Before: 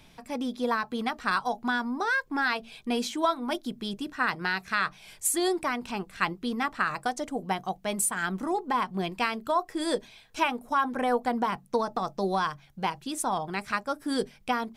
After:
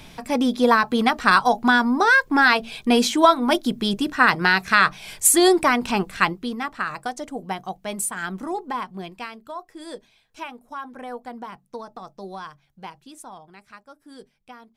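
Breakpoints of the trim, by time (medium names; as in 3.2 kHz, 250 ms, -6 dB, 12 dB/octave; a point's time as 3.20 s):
6.09 s +11 dB
6.58 s +0.5 dB
8.61 s +0.5 dB
9.42 s -8.5 dB
12.97 s -8.5 dB
13.58 s -15.5 dB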